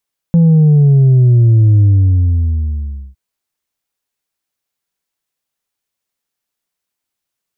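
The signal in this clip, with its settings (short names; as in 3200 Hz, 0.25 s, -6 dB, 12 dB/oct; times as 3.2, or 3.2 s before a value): sub drop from 170 Hz, over 2.81 s, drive 2.5 dB, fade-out 1.33 s, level -5.5 dB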